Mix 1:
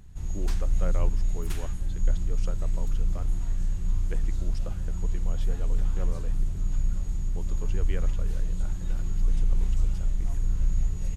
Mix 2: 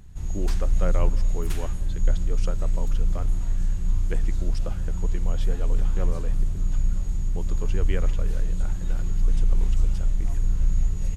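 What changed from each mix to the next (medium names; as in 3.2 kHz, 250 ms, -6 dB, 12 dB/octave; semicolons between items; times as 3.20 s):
speech +4.0 dB; reverb: on, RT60 1.7 s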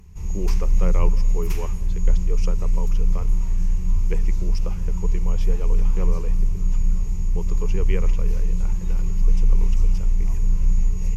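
master: add rippled EQ curve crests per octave 0.8, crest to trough 10 dB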